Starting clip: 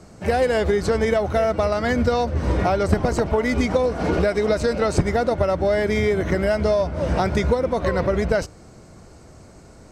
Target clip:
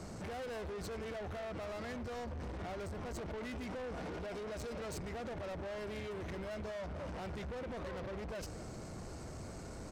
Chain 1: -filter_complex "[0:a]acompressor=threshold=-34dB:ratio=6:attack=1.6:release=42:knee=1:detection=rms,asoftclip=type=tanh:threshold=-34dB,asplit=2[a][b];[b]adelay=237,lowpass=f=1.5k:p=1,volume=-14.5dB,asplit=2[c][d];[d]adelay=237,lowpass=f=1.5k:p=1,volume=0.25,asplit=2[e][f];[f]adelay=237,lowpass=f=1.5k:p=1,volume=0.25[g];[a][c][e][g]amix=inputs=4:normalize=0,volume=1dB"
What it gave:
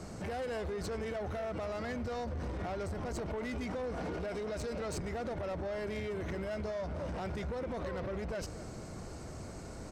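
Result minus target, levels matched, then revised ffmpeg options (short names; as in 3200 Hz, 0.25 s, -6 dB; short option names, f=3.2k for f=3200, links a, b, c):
soft clip: distortion -7 dB
-filter_complex "[0:a]acompressor=threshold=-34dB:ratio=6:attack=1.6:release=42:knee=1:detection=rms,asoftclip=type=tanh:threshold=-41.5dB,asplit=2[a][b];[b]adelay=237,lowpass=f=1.5k:p=1,volume=-14.5dB,asplit=2[c][d];[d]adelay=237,lowpass=f=1.5k:p=1,volume=0.25,asplit=2[e][f];[f]adelay=237,lowpass=f=1.5k:p=1,volume=0.25[g];[a][c][e][g]amix=inputs=4:normalize=0,volume=1dB"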